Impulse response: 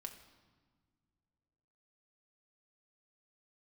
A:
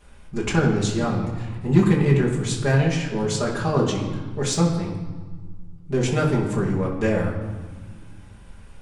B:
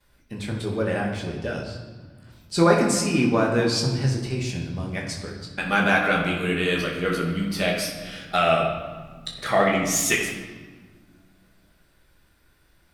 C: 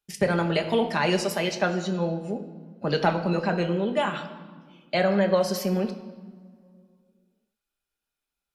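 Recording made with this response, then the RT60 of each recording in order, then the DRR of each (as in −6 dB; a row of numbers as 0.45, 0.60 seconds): C; 1.5 s, 1.5 s, non-exponential decay; −6.0, −14.5, 3.5 decibels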